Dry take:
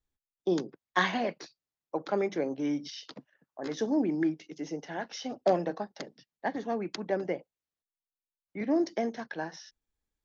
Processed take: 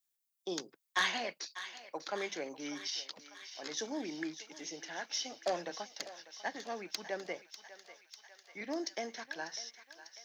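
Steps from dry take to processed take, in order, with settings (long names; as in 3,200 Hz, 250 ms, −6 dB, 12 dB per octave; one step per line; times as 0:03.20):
spectral tilt +4.5 dB per octave
soft clipping −16 dBFS, distortion −18 dB
feedback echo with a high-pass in the loop 596 ms, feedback 75%, high-pass 880 Hz, level −12 dB
level −5 dB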